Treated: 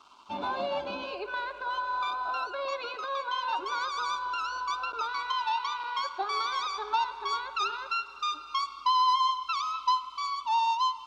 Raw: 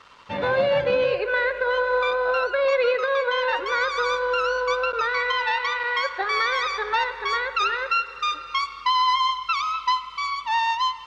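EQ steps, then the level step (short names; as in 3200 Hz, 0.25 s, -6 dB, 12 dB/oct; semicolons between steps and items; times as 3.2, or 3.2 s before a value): low shelf 95 Hz -12 dB; fixed phaser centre 500 Hz, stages 6; -2.5 dB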